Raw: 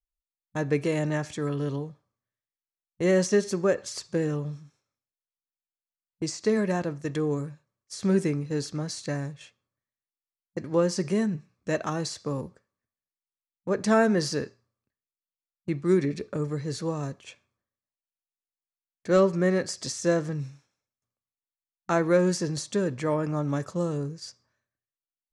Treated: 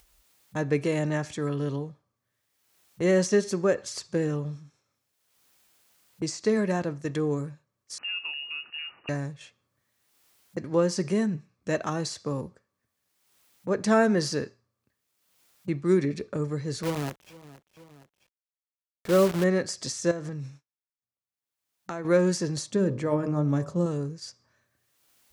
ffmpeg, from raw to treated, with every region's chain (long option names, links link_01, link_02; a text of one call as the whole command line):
ffmpeg -i in.wav -filter_complex "[0:a]asettb=1/sr,asplit=3[link_01][link_02][link_03];[link_01]atrim=end=7.984[link_04];[link_02]atrim=start=7.98:end=9.09,asetpts=PTS-STARTPTS,afade=type=in:duration=0.004:curve=qsin,afade=type=out:start_time=1.106:duration=0.004:curve=qsin,lowpass=frequency=2600:width_type=q:width=0.5098,lowpass=frequency=2600:width_type=q:width=0.6013,lowpass=frequency=2600:width_type=q:width=0.9,lowpass=frequency=2600:width_type=q:width=2.563,afreqshift=-3000,acompressor=threshold=-35dB:ratio=2.5:attack=3.2:release=140:knee=1:detection=peak[link_05];[link_03]atrim=start=9.086[link_06];[link_04][link_05]acrossfade=duration=0.004:curve1=hsin:curve2=qsin[link_07];[link_07][link_06]acrossfade=duration=0.004:curve1=qsin:curve2=hsin,asettb=1/sr,asplit=3[link_08][link_09][link_10];[link_08]atrim=end=16.834[link_11];[link_09]atrim=start=16.83:end=19.44,asetpts=PTS-STARTPTS,afade=type=in:duration=0.004:curve=qsin,afade=type=out:start_time=2.606:duration=0.004:curve=qsin,lowpass=frequency=1800:poles=1,acrusher=bits=6:dc=4:mix=0:aa=0.000001,aecho=1:1:468|936:0.0668|0.018,atrim=end_sample=115101[link_12];[link_10]atrim=start=19.436[link_13];[link_11][link_12]acrossfade=duration=0.004:curve1=hsin:curve2=qsin[link_14];[link_14][link_13]acrossfade=duration=0.004:curve1=qsin:curve2=hsin,asettb=1/sr,asplit=3[link_15][link_16][link_17];[link_15]atrim=end=20.114[link_18];[link_16]atrim=start=20.11:end=22.05,asetpts=PTS-STARTPTS,afade=type=in:duration=0.004:curve=qsin,afade=type=out:start_time=1.936:duration=0.004:curve=qsin,agate=range=-33dB:threshold=-50dB:ratio=3:release=100:detection=peak,acompressor=threshold=-31dB:ratio=6:attack=3.2:release=140:knee=1:detection=peak[link_19];[link_17]atrim=start=22.046[link_20];[link_18][link_19]acrossfade=duration=0.004:curve1=hsin:curve2=qsin[link_21];[link_21][link_20]acrossfade=duration=0.004:curve1=qsin:curve2=hsin,asettb=1/sr,asplit=3[link_22][link_23][link_24];[link_22]atrim=end=22.704[link_25];[link_23]atrim=start=22.7:end=23.86,asetpts=PTS-STARTPTS,afade=type=in:duration=0.004:curve=qsin,afade=type=out:start_time=1.156:duration=0.004:curve=qsin,tiltshelf=frequency=640:gain=4.5,bandreject=frequency=51.65:width_type=h:width=4,bandreject=frequency=103.3:width_type=h:width=4,bandreject=frequency=154.95:width_type=h:width=4,bandreject=frequency=206.6:width_type=h:width=4,bandreject=frequency=258.25:width_type=h:width=4,bandreject=frequency=309.9:width_type=h:width=4,bandreject=frequency=361.55:width_type=h:width=4,bandreject=frequency=413.2:width_type=h:width=4,bandreject=frequency=464.85:width_type=h:width=4,bandreject=frequency=516.5:width_type=h:width=4,bandreject=frequency=568.15:width_type=h:width=4,bandreject=frequency=619.8:width_type=h:width=4,bandreject=frequency=671.45:width_type=h:width=4,bandreject=frequency=723.1:width_type=h:width=4,bandreject=frequency=774.75:width_type=h:width=4,bandreject=frequency=826.4:width_type=h:width=4,bandreject=frequency=878.05:width_type=h:width=4,bandreject=frequency=929.7:width_type=h:width=4,bandreject=frequency=981.35:width_type=h:width=4,bandreject=frequency=1033:width_type=h:width=4,bandreject=frequency=1084.65:width_type=h:width=4,bandreject=frequency=1136.3:width_type=h:width=4,bandreject=frequency=1187.95:width_type=h:width=4,bandreject=frequency=1239.6:width_type=h:width=4[link_26];[link_24]atrim=start=23.856[link_27];[link_25][link_26]acrossfade=duration=0.004:curve1=hsin:curve2=qsin[link_28];[link_28][link_27]acrossfade=duration=0.004:curve1=qsin:curve2=hsin,highpass=46,acompressor=mode=upward:threshold=-39dB:ratio=2.5" out.wav